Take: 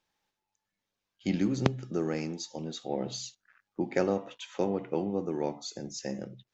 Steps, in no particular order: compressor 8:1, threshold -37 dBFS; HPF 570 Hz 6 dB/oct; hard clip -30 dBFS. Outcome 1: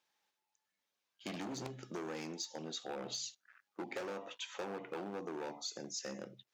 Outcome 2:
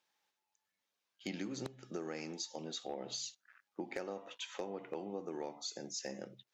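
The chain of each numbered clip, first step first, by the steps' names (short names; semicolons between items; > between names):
hard clip > HPF > compressor; HPF > compressor > hard clip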